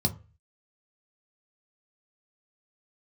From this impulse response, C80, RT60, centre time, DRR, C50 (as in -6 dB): 23.0 dB, 0.35 s, 6 ms, 4.5 dB, 17.5 dB